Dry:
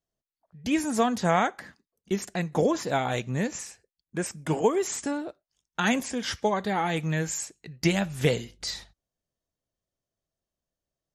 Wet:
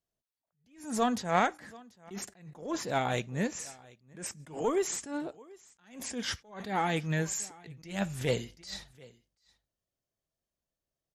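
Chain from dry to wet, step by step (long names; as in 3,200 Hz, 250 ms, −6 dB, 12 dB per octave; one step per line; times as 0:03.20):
single-tap delay 736 ms −23.5 dB
harmonic generator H 2 −16 dB, 8 −40 dB, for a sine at −10.5 dBFS
level that may rise only so fast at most 130 dB per second
level −2.5 dB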